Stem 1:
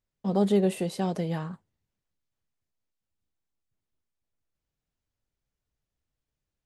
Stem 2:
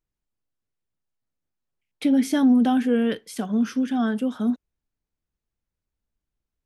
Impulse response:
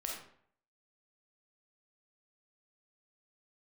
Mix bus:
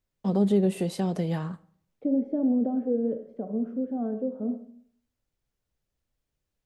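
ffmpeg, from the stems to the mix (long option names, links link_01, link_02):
-filter_complex "[0:a]volume=1.5dB,asplit=2[link_01][link_02];[link_02]volume=-18dB[link_03];[1:a]lowpass=frequency=540:width_type=q:width=4,volume=-12.5dB,asplit=2[link_04][link_05];[link_05]volume=-3.5dB[link_06];[2:a]atrim=start_sample=2205[link_07];[link_03][link_06]amix=inputs=2:normalize=0[link_08];[link_08][link_07]afir=irnorm=-1:irlink=0[link_09];[link_01][link_04][link_09]amix=inputs=3:normalize=0,acrossover=split=430[link_10][link_11];[link_11]acompressor=threshold=-34dB:ratio=6[link_12];[link_10][link_12]amix=inputs=2:normalize=0"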